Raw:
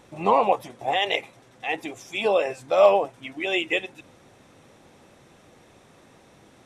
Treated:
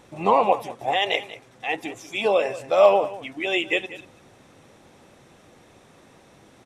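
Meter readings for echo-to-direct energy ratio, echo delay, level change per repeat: −16.0 dB, 188 ms, repeats not evenly spaced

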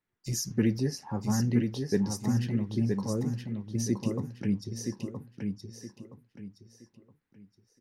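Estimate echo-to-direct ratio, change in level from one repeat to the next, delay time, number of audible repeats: −4.5 dB, −10.5 dB, 970 ms, 3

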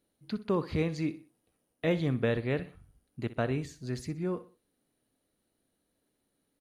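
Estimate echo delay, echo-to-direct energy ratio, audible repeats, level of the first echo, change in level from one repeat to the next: 62 ms, −14.5 dB, 3, −15.0 dB, −9.0 dB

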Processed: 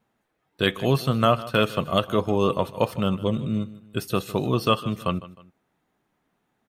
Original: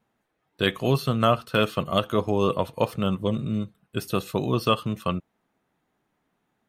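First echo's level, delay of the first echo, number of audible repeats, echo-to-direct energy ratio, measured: −17.5 dB, 155 ms, 2, −17.0 dB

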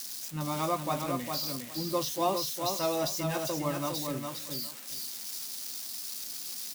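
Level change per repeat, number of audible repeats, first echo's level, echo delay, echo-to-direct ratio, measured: −15.0 dB, 2, −5.0 dB, 407 ms, −5.0 dB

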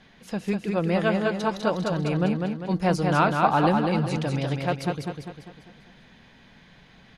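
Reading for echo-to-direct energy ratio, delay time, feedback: −3.0 dB, 199 ms, 46%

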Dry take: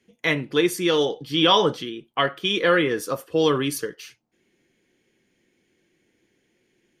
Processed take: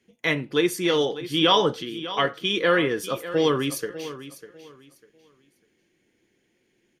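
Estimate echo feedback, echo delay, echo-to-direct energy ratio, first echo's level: 25%, 598 ms, −13.5 dB, −14.0 dB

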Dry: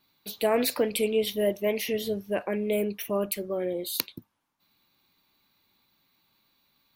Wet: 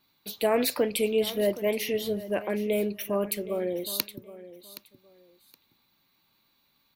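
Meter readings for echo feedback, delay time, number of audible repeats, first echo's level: 23%, 770 ms, 2, −16.0 dB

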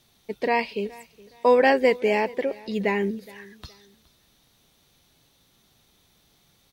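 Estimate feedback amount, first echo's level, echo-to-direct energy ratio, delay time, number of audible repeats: 31%, −22.0 dB, −21.5 dB, 418 ms, 2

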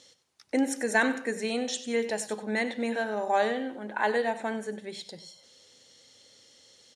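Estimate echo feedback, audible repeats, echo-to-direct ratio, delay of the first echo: 22%, 2, −14.0 dB, 95 ms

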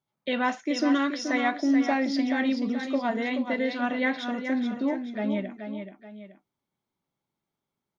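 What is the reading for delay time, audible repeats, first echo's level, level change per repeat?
429 ms, 2, −7.5 dB, −8.0 dB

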